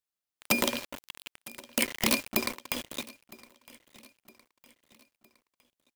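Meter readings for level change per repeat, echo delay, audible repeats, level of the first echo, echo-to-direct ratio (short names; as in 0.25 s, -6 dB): -6.5 dB, 0.961 s, 3, -22.0 dB, -21.0 dB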